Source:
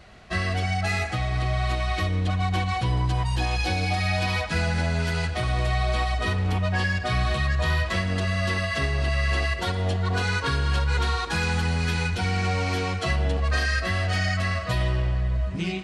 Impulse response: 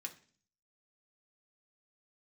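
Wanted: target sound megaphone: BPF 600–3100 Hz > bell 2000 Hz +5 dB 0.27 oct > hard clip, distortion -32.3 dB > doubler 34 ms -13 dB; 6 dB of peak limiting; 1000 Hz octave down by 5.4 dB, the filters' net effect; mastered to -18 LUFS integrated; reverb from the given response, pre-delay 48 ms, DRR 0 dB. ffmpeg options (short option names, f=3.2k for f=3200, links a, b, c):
-filter_complex "[0:a]equalizer=f=1k:t=o:g=-6.5,alimiter=limit=-20dB:level=0:latency=1,asplit=2[a][b];[1:a]atrim=start_sample=2205,adelay=48[c];[b][c]afir=irnorm=-1:irlink=0,volume=2.5dB[d];[a][d]amix=inputs=2:normalize=0,highpass=600,lowpass=3.1k,equalizer=f=2k:t=o:w=0.27:g=5,asoftclip=type=hard:threshold=-21.5dB,asplit=2[e][f];[f]adelay=34,volume=-13dB[g];[e][g]amix=inputs=2:normalize=0,volume=12dB"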